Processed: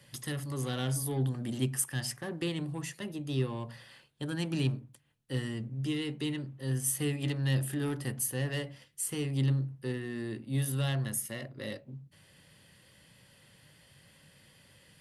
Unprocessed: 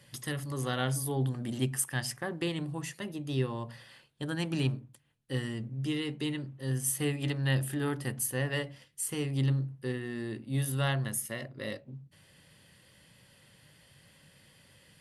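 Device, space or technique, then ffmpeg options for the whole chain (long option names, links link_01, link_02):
one-band saturation: -filter_complex "[0:a]acrossover=split=430|2600[link_01][link_02][link_03];[link_02]asoftclip=type=tanh:threshold=-39.5dB[link_04];[link_01][link_04][link_03]amix=inputs=3:normalize=0"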